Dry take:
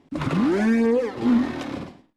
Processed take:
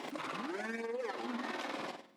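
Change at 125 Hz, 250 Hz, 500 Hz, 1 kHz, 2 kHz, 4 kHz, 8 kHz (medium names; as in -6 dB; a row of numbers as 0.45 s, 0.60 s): under -25 dB, -22.5 dB, -16.0 dB, -8.0 dB, -9.0 dB, -6.5 dB, no reading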